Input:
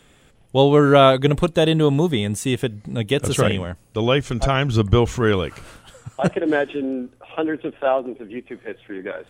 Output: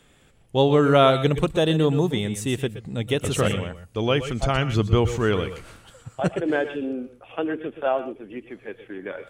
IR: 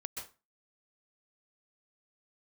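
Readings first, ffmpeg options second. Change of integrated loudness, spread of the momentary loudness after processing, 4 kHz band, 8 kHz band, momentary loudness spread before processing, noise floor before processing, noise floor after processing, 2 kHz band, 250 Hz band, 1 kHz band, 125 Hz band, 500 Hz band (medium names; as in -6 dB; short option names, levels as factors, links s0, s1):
-3.5 dB, 18 LU, -3.5 dB, -3.5 dB, 17 LU, -54 dBFS, -56 dBFS, -3.5 dB, -3.5 dB, -3.5 dB, -3.0 dB, -3.5 dB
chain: -filter_complex "[1:a]atrim=start_sample=2205,afade=t=out:st=0.17:d=0.01,atrim=end_sample=7938[s0];[0:a][s0]afir=irnorm=-1:irlink=0"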